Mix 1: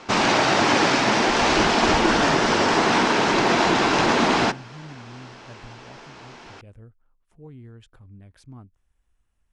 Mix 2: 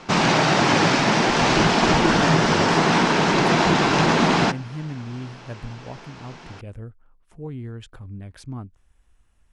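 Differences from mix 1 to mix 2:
speech +9.5 dB; background: add peaking EQ 160 Hz +12 dB 0.44 oct

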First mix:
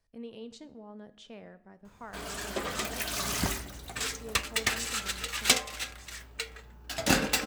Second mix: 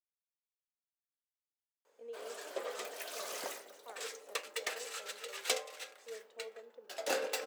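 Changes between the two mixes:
speech: entry +1.85 s; master: add ladder high-pass 440 Hz, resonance 65%

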